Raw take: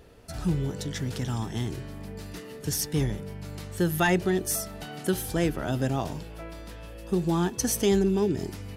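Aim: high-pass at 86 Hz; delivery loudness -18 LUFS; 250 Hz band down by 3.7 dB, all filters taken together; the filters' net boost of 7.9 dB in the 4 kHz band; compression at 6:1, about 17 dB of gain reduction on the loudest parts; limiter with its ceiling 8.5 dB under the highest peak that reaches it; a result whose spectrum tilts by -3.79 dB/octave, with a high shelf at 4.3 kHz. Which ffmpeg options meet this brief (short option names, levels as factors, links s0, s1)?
-af "highpass=86,equalizer=f=250:t=o:g=-6,equalizer=f=4000:t=o:g=5,highshelf=f=4300:g=9,acompressor=threshold=0.0158:ratio=6,volume=12.6,alimiter=limit=0.447:level=0:latency=1"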